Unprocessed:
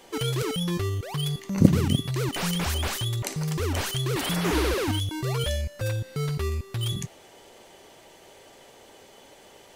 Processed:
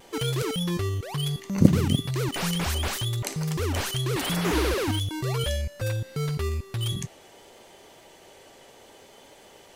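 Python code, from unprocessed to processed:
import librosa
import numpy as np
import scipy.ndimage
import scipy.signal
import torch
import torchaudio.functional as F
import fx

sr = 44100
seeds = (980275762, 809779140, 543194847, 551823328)

y = fx.vibrato(x, sr, rate_hz=0.68, depth_cents=20.0)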